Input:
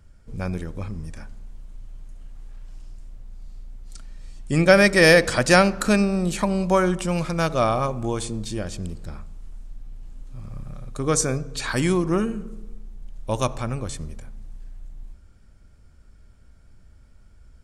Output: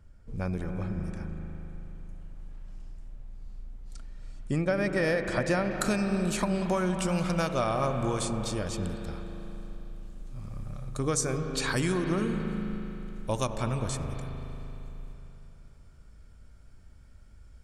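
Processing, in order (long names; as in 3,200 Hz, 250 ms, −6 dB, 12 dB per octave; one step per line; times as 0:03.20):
high-shelf EQ 2,700 Hz −6.5 dB, from 0:04.56 −11.5 dB, from 0:05.71 +2 dB
downward compressor 6 to 1, threshold −21 dBFS, peak gain reduction 11 dB
convolution reverb RT60 3.3 s, pre-delay 188 ms, DRR 5.5 dB
level −3 dB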